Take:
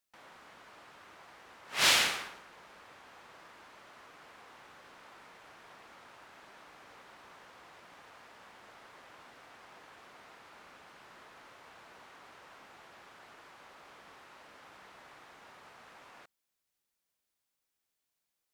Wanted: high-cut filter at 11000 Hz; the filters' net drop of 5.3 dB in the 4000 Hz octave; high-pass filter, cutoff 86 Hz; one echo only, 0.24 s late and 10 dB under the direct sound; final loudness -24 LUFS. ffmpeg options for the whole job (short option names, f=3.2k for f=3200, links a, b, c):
-af "highpass=86,lowpass=11k,equalizer=f=4k:t=o:g=-7,aecho=1:1:240:0.316,volume=6.5dB"